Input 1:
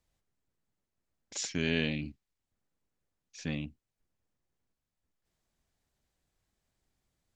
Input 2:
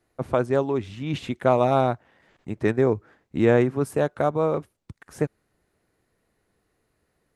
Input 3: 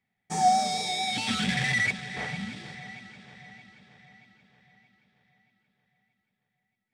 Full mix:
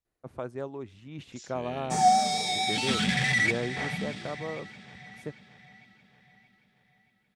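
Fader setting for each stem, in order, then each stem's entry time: -13.0 dB, -14.0 dB, +1.0 dB; 0.00 s, 0.05 s, 1.60 s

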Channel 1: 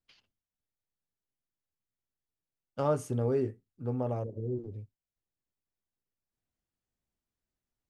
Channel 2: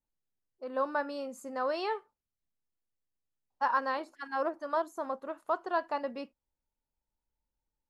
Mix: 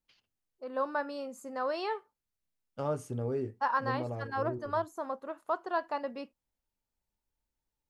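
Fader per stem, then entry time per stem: -4.5 dB, -1.0 dB; 0.00 s, 0.00 s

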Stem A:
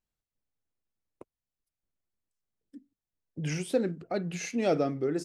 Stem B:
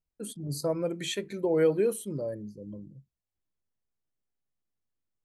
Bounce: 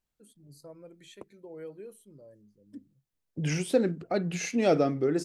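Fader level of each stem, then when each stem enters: +3.0 dB, -19.0 dB; 0.00 s, 0.00 s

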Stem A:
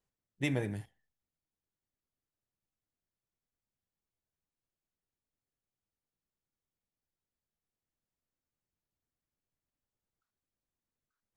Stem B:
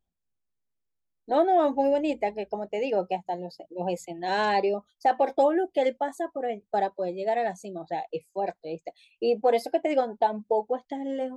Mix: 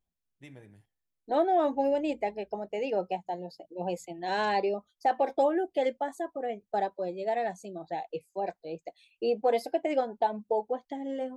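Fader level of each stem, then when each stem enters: -17.5 dB, -3.5 dB; 0.00 s, 0.00 s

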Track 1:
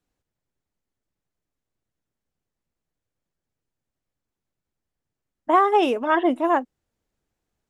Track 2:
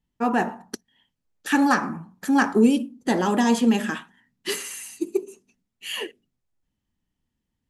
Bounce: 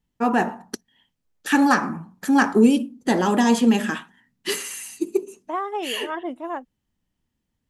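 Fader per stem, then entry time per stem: -10.0 dB, +2.0 dB; 0.00 s, 0.00 s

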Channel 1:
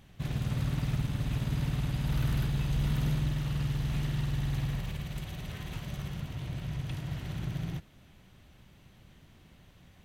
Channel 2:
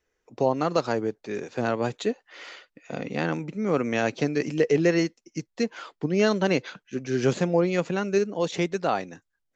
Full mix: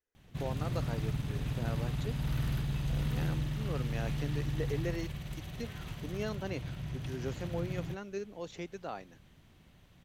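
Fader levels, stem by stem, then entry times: -3.5 dB, -16.0 dB; 0.15 s, 0.00 s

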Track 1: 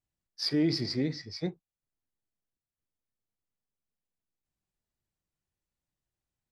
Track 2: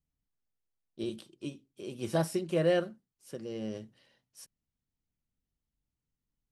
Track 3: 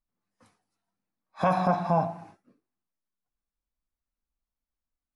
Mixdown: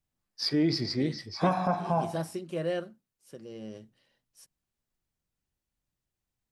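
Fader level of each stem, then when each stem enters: +1.0 dB, -4.5 dB, -3.5 dB; 0.00 s, 0.00 s, 0.00 s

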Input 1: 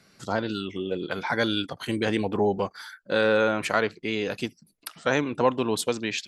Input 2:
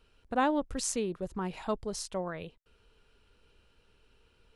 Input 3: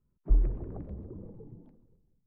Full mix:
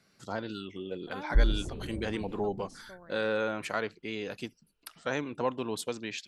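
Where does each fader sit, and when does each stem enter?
-8.5 dB, -16.5 dB, 0.0 dB; 0.00 s, 0.75 s, 1.05 s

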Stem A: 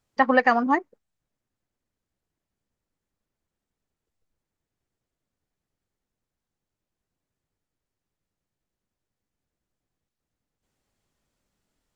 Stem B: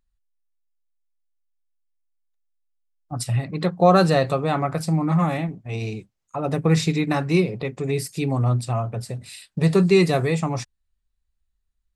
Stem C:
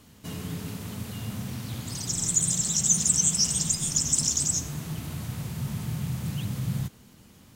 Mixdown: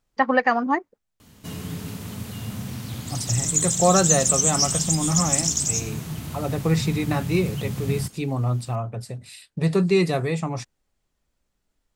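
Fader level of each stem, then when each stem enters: -0.5 dB, -3.0 dB, +2.0 dB; 0.00 s, 0.00 s, 1.20 s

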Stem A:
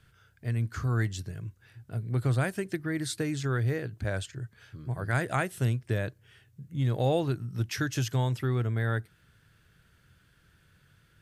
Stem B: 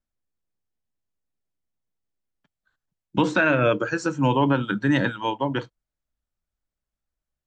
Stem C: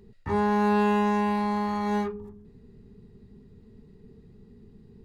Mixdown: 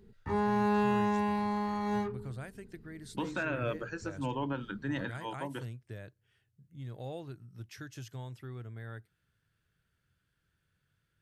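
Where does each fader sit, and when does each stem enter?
-15.5 dB, -14.5 dB, -5.5 dB; 0.00 s, 0.00 s, 0.00 s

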